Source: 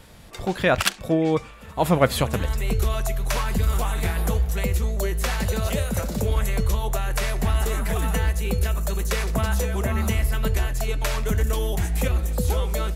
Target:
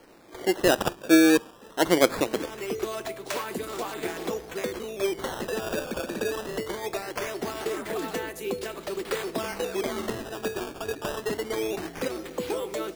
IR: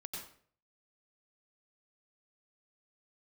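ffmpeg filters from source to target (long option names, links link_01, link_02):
-af "highpass=frequency=330:width_type=q:width=3.7,acrusher=samples=12:mix=1:aa=0.000001:lfo=1:lforange=19.2:lforate=0.21,volume=-5dB"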